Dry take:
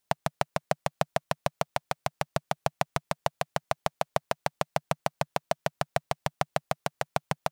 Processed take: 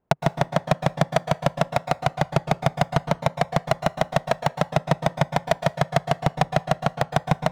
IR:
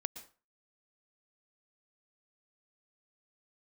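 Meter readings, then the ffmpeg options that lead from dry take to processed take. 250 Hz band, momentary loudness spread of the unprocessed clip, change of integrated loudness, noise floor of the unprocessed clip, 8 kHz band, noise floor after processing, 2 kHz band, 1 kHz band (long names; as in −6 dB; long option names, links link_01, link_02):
+13.0 dB, 3 LU, +8.5 dB, −79 dBFS, +2.5 dB, −49 dBFS, +7.0 dB, +7.0 dB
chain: -filter_complex "[0:a]aemphasis=mode=reproduction:type=riaa,adynamicsmooth=sensitivity=4:basefreq=620,asplit=2[link_01][link_02];[link_02]highpass=frequency=720:poles=1,volume=29dB,asoftclip=type=tanh:threshold=-5dB[link_03];[link_01][link_03]amix=inputs=2:normalize=0,lowpass=frequency=7300:poles=1,volume=-6dB[link_04];[1:a]atrim=start_sample=2205[link_05];[link_04][link_05]afir=irnorm=-1:irlink=0"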